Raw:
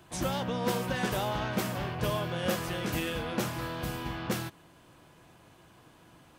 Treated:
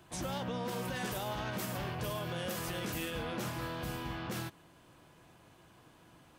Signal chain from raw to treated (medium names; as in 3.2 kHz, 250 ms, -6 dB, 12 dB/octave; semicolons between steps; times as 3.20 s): 0.85–3.11 s: treble shelf 6.2 kHz +7 dB; peak limiter -25 dBFS, peak gain reduction 9 dB; trim -3 dB